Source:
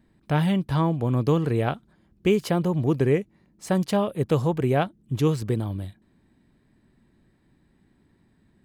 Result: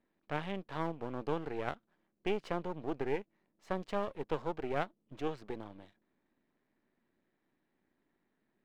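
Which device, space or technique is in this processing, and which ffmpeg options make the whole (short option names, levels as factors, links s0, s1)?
crystal radio: -af "highpass=320,lowpass=3000,aeval=exprs='if(lt(val(0),0),0.251*val(0),val(0))':c=same,volume=0.422"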